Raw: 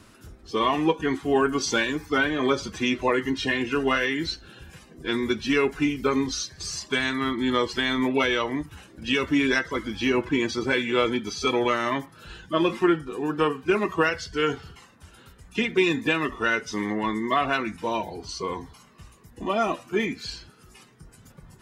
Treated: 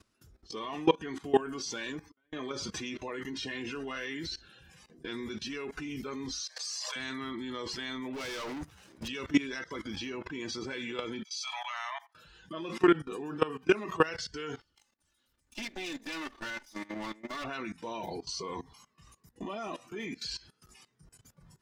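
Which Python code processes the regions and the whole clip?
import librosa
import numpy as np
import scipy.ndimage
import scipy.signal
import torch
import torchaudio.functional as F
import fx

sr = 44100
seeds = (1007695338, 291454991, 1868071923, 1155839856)

y = fx.chain(x, sr, fx.high_shelf(hz=5200.0, db=-9.5),
    fx.gate_flip(shuts_db=-18.0, range_db=-36),
    fx.auto_swell(attack_ms=252.0), at=(1.92, 2.33))
y = fx.chain(y, sr, fx.brickwall_highpass(low_hz=450.0),
    fx.pre_swell(db_per_s=92.0), at=(6.41, 6.96))
y = fx.chain(y, sr, fx.level_steps(step_db=19),
    fx.leveller(passes=5), at=(8.13, 9.08))
y = fx.chain(y, sr, fx.cheby_ripple_highpass(hz=660.0, ripple_db=3),
    fx.band_widen(depth_pct=70), at=(11.24, 12.15))
y = fx.chain(y, sr, fx.lower_of_two(delay_ms=3.4),
    fx.high_shelf(hz=3500.0, db=5.5),
    fx.level_steps(step_db=14), at=(14.6, 17.44))
y = fx.noise_reduce_blind(y, sr, reduce_db=7)
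y = fx.peak_eq(y, sr, hz=5200.0, db=5.5, octaves=0.89)
y = fx.level_steps(y, sr, step_db=19)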